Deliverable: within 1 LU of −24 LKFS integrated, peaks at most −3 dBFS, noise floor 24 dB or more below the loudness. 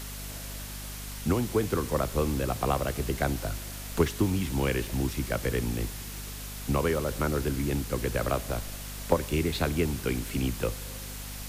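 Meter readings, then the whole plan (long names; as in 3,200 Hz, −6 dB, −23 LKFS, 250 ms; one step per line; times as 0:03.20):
mains hum 50 Hz; hum harmonics up to 250 Hz; level of the hum −38 dBFS; background noise floor −39 dBFS; target noise floor −54 dBFS; integrated loudness −30.0 LKFS; sample peak −10.0 dBFS; target loudness −24.0 LKFS
→ hum removal 50 Hz, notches 5
noise reduction from a noise print 15 dB
level +6 dB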